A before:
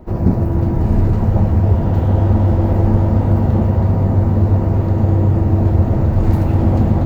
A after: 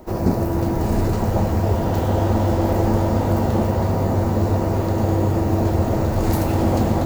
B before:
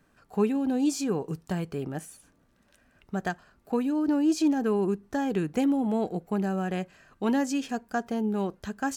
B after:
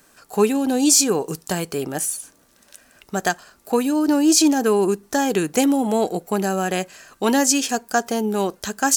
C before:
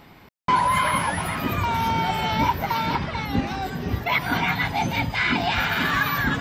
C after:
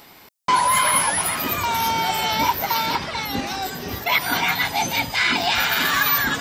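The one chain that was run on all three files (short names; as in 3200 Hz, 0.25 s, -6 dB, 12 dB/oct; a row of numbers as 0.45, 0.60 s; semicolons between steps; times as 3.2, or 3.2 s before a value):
tone controls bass -10 dB, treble +13 dB; match loudness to -20 LUFS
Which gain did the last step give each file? +2.5, +10.0, +1.5 dB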